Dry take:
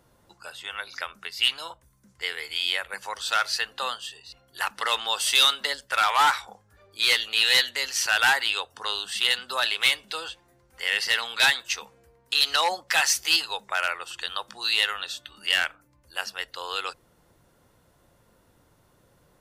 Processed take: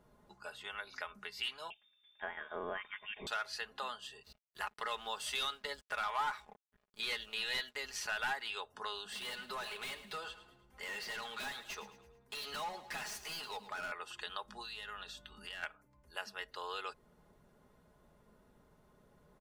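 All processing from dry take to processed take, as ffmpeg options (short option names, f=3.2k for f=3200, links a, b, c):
-filter_complex "[0:a]asettb=1/sr,asplit=3[a][b][c];[a]atrim=end=1.704[d];[b]atrim=start=1.7:end=3.27,asetpts=PTS-STARTPTS,afade=t=in:d=0.004:c=qsin,afade=t=out:st=1.566:d=0.004:c=qsin,asubboost=boost=5:cutoff=250,lowpass=f=3.1k:t=q:w=0.5098,lowpass=f=3.1k:t=q:w=0.6013,lowpass=f=3.1k:t=q:w=0.9,lowpass=f=3.1k:t=q:w=2.563,afreqshift=-3700[e];[c]atrim=start=3.266[f];[d][e]acrossfade=d=0.004:c1=hsin:c2=qsin[g];[g][f]acrossfade=d=0.004:c1=qsin:c2=hsin,asettb=1/sr,asplit=3[h][i][j];[h]atrim=end=4.234[k];[i]atrim=start=4.23:end=8.42,asetpts=PTS-STARTPTS,afade=t=in:d=0.004:c=qsin,afade=t=out:st=4.186:d=0.004:c=qsin,lowshelf=f=120:g=10.5,aeval=exprs='sgn(val(0))*max(abs(val(0))-0.00422,0)':c=same[l];[j]atrim=start=8.416[m];[k][l]acrossfade=d=0.004:c1=hsin:c2=qsin[n];[n][m]acrossfade=d=0.004:c1=qsin:c2=hsin,asettb=1/sr,asplit=3[o][p][q];[o]atrim=end=9.114[r];[p]atrim=start=9.11:end=13.92,asetpts=PTS-STARTPTS,afade=t=in:d=0.004:c=qsin,afade=t=out:st=4.806:d=0.004:c=qsin,volume=29.5dB,asoftclip=hard,volume=-29.5dB,aecho=1:1:108|216|324|432:0.178|0.0747|0.0314|0.0132,atrim=end_sample=212121[s];[q]atrim=start=13.916[t];[r][s]acrossfade=d=0.004:c1=hsin:c2=qsin[u];[u][t]acrossfade=d=0.004:c1=qsin:c2=hsin,asettb=1/sr,asplit=3[v][w][x];[v]atrim=end=14.454[y];[w]atrim=start=14.45:end=15.63,asetpts=PTS-STARTPTS,afade=t=in:d=0.004:c=qsin,afade=t=out:st=1.176:d=0.004:c=qsin,acompressor=threshold=-34dB:ratio=4:attack=3.2:release=140:knee=1:detection=peak,bandreject=f=2.2k:w=8,aeval=exprs='val(0)+0.001*(sin(2*PI*50*n/s)+sin(2*PI*2*50*n/s)/2+sin(2*PI*3*50*n/s)/3+sin(2*PI*4*50*n/s)/4+sin(2*PI*5*50*n/s)/5)':c=same[z];[x]atrim=start=15.626[aa];[y][z]acrossfade=d=0.004:c1=hsin:c2=qsin[ab];[ab][aa]acrossfade=d=0.004:c1=qsin:c2=hsin,highshelf=f=2.2k:g=-10.5,aecho=1:1:4.8:0.57,acompressor=threshold=-37dB:ratio=2,volume=-4dB"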